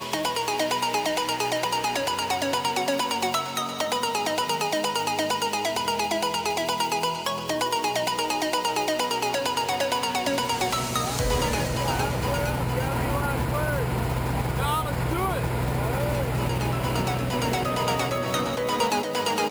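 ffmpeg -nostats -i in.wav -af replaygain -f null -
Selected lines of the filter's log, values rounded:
track_gain = +7.9 dB
track_peak = 0.171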